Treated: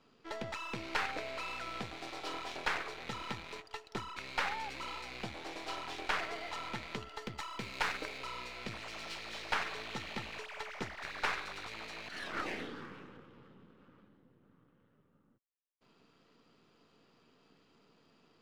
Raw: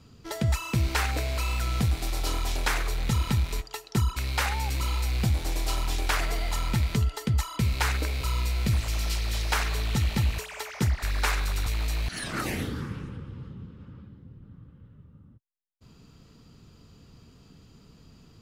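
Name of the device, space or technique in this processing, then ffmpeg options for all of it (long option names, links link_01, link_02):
crystal radio: -filter_complex "[0:a]highpass=360,lowpass=3400,aeval=exprs='if(lt(val(0),0),0.447*val(0),val(0))':channel_layout=same,asettb=1/sr,asplit=3[link_01][link_02][link_03];[link_01]atrim=end=7.224[link_04];[link_02]atrim=start=7.22:end=8.18,asetpts=PTS-STARTPTS,afade=type=in:duration=0.004:curve=qsin,afade=type=out:start_time=0.956:duration=0.004:curve=qsin,highshelf=frequency=6000:gain=5[link_05];[link_03]atrim=start=8.176[link_06];[link_04][link_05]acrossfade=duration=0.004:curve1=hsin:curve2=qsin[link_07];[link_07][link_06]acrossfade=duration=0.004:curve1=qsin:curve2=hsin,volume=-2.5dB"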